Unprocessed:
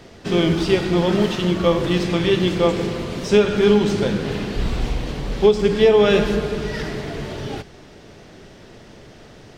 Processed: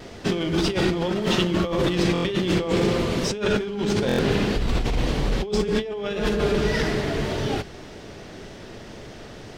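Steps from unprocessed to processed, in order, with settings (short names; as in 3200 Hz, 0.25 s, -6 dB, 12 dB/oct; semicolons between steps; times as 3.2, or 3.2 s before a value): bell 150 Hz -2 dB 0.65 oct; negative-ratio compressor -23 dBFS, ratio -1; vibrato 1.8 Hz 34 cents; stuck buffer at 2.13/4.07, samples 1024, times 4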